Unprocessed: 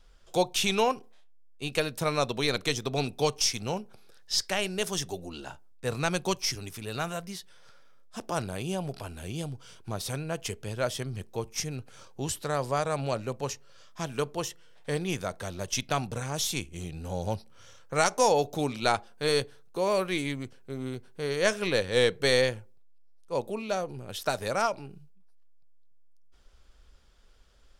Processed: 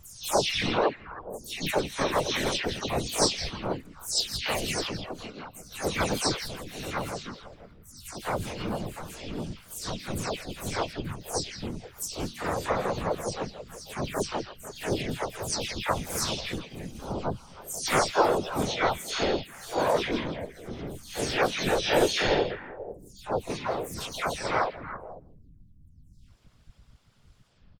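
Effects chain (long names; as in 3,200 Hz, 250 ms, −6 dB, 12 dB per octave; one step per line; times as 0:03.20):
every frequency bin delayed by itself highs early, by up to 291 ms
reverb reduction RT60 0.63 s
random phases in short frames
pitch-shifted copies added −5 semitones −7 dB, −3 semitones −5 dB, +7 semitones −4 dB
on a send: echo through a band-pass that steps 163 ms, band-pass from 3,700 Hz, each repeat −1.4 octaves, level −6.5 dB
on the sum: level −1 dB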